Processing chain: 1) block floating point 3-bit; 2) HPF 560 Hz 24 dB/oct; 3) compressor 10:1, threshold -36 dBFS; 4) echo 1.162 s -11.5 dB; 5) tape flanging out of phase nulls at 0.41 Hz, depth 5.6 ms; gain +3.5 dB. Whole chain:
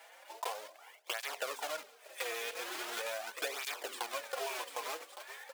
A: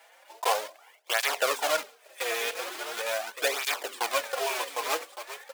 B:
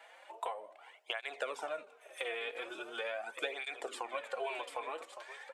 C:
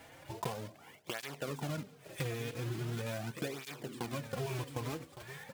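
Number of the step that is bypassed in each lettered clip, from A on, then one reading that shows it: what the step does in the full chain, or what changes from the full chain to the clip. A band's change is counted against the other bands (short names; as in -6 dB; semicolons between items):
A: 3, mean gain reduction 6.5 dB; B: 1, distortion -9 dB; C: 2, 250 Hz band +20.0 dB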